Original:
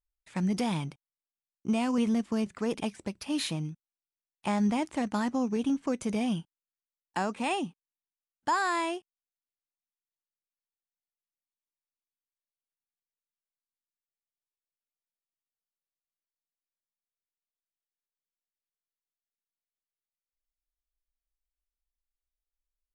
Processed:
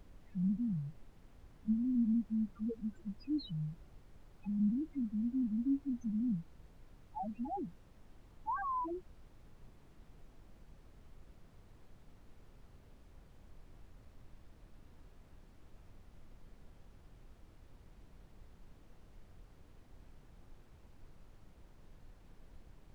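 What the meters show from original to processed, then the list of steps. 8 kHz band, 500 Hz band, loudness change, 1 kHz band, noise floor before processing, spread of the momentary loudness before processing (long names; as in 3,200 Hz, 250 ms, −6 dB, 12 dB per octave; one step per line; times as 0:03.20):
below −25 dB, −17.0 dB, −6.5 dB, −9.5 dB, below −85 dBFS, 11 LU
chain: spectral peaks only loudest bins 1
background noise brown −55 dBFS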